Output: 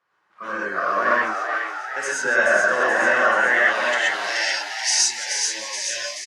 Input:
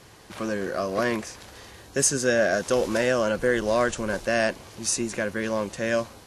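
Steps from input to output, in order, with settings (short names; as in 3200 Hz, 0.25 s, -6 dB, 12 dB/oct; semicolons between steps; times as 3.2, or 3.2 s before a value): band-pass sweep 1300 Hz -> 4700 Hz, 3.15–4.33; on a send: frequency-shifting echo 0.429 s, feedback 58%, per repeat +90 Hz, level -5 dB; on the sum: non-linear reverb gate 0.15 s rising, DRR -5 dB; AGC gain up to 8 dB; spectral noise reduction 15 dB; 1.55–2.25 HPF 540 Hz 6 dB/oct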